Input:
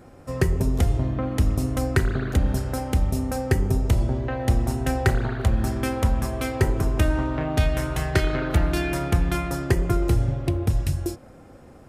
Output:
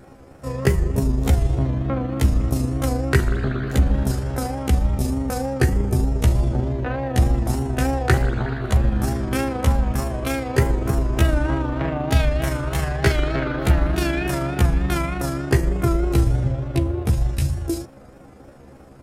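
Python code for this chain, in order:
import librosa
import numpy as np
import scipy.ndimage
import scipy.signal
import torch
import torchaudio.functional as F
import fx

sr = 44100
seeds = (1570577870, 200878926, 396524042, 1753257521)

y = fx.vibrato(x, sr, rate_hz=5.3, depth_cents=73.0)
y = fx.stretch_grains(y, sr, factor=1.6, grain_ms=79.0)
y = y * librosa.db_to_amplitude(3.5)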